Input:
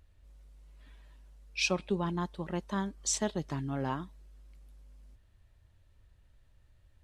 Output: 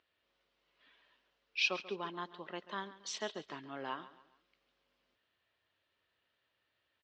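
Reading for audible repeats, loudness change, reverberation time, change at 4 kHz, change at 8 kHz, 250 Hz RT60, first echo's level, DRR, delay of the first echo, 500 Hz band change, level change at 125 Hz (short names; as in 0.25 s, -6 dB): 3, -5.5 dB, none, -1.5 dB, -13.5 dB, none, -16.0 dB, none, 0.138 s, -7.0 dB, -20.5 dB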